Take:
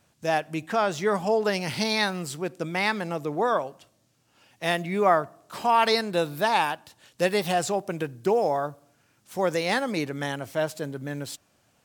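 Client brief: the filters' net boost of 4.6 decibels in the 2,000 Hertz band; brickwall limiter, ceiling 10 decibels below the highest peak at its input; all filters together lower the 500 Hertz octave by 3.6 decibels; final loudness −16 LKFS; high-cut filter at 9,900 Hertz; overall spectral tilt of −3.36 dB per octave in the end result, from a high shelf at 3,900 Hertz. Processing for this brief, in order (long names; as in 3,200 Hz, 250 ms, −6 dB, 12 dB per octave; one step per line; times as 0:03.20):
low-pass filter 9,900 Hz
parametric band 500 Hz −5 dB
parametric band 2,000 Hz +4 dB
high-shelf EQ 3,900 Hz +7.5 dB
level +12.5 dB
brickwall limiter −2.5 dBFS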